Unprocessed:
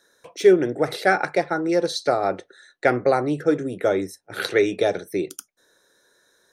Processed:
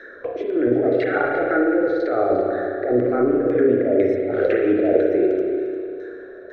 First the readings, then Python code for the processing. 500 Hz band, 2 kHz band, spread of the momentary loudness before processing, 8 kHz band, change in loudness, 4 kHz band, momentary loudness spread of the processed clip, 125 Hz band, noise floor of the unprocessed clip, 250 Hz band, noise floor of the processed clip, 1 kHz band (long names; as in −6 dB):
+3.0 dB, −1.0 dB, 11 LU, below −25 dB, +2.5 dB, below −10 dB, 11 LU, −0.5 dB, −66 dBFS, +5.5 dB, −39 dBFS, −2.0 dB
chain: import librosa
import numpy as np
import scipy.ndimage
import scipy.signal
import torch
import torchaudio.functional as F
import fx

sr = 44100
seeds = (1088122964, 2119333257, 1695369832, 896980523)

p1 = fx.lowpass(x, sr, hz=3800.0, slope=6)
p2 = fx.over_compress(p1, sr, threshold_db=-27.0, ratio=-1.0)
p3 = fx.filter_lfo_lowpass(p2, sr, shape='saw_down', hz=2.0, low_hz=560.0, high_hz=1900.0, q=2.1)
p4 = fx.fixed_phaser(p3, sr, hz=390.0, stages=4)
p5 = p4 + fx.echo_single(p4, sr, ms=350, db=-15.0, dry=0)
p6 = fx.rev_spring(p5, sr, rt60_s=1.8, pass_ms=(32, 49), chirp_ms=35, drr_db=-0.5)
p7 = fx.band_squash(p6, sr, depth_pct=40)
y = p7 * librosa.db_to_amplitude(6.0)